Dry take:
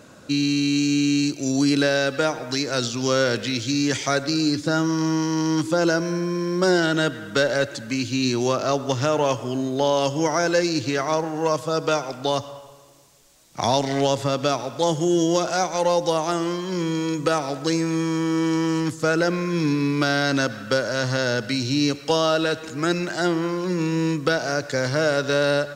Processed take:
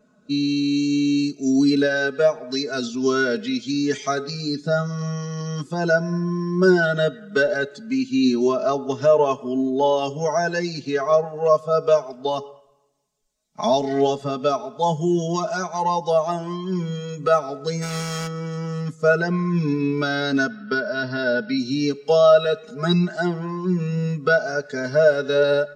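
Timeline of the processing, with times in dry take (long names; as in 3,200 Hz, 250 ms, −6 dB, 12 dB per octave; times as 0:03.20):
0:17.81–0:18.26: compressing power law on the bin magnitudes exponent 0.53
0:20.48–0:21.58: Butterworth low-pass 5,700 Hz 96 dB per octave
0:22.68–0:23.08: comb filter 4.9 ms, depth 77%
whole clip: comb filter 4.7 ms, depth 96%; hum removal 421.9 Hz, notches 32; every bin expanded away from the loudest bin 1.5 to 1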